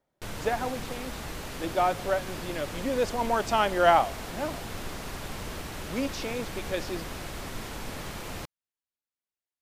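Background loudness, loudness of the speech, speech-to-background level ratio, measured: -38.0 LUFS, -29.0 LUFS, 9.0 dB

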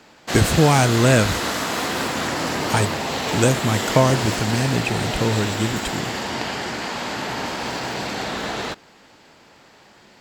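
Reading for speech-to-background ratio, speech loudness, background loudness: 4.0 dB, -20.5 LUFS, -24.5 LUFS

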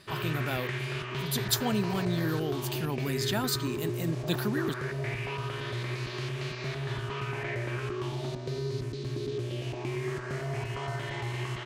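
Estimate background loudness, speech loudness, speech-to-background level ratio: -34.5 LUFS, -32.5 LUFS, 2.0 dB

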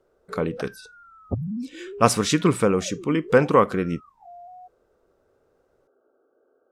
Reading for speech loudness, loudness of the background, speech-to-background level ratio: -21.5 LUFS, -37.5 LUFS, 16.0 dB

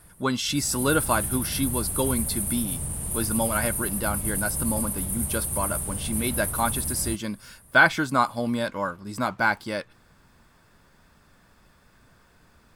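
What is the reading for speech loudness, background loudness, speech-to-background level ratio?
-27.0 LUFS, -27.5 LUFS, 0.5 dB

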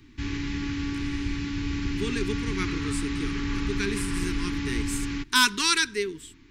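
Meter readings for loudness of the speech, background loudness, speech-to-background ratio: -28.0 LUFS, -30.5 LUFS, 2.5 dB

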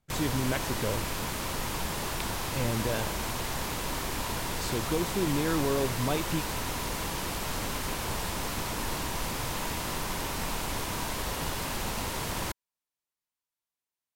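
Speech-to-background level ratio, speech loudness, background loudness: 0.0 dB, -32.5 LUFS, -32.5 LUFS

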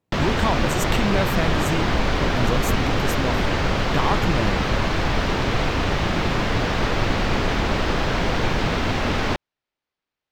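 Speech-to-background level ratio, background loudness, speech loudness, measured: -5.0 dB, -22.5 LUFS, -27.5 LUFS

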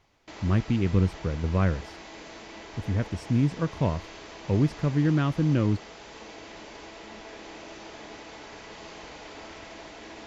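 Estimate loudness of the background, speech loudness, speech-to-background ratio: -43.0 LUFS, -26.5 LUFS, 16.5 dB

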